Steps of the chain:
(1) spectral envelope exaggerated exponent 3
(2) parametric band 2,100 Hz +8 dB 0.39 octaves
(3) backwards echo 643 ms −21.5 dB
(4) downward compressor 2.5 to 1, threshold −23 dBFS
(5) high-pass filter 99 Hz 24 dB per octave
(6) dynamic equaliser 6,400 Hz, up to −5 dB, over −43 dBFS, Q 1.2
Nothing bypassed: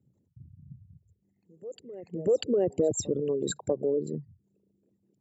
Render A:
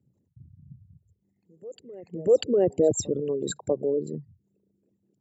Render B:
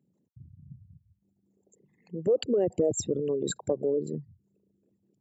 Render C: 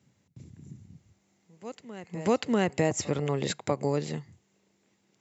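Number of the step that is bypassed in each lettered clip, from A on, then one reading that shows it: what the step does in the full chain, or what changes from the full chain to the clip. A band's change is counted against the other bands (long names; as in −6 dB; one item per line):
4, 1 kHz band +1.5 dB
3, change in momentary loudness spread −8 LU
1, 2 kHz band +10.0 dB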